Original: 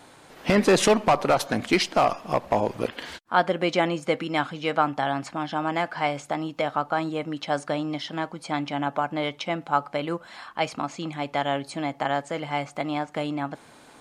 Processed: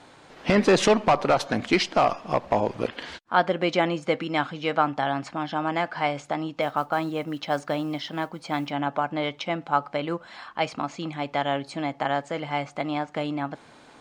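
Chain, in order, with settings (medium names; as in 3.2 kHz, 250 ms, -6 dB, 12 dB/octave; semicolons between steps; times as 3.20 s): low-pass 6.4 kHz 12 dB/octave; 6.61–8.71 s: modulation noise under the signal 32 dB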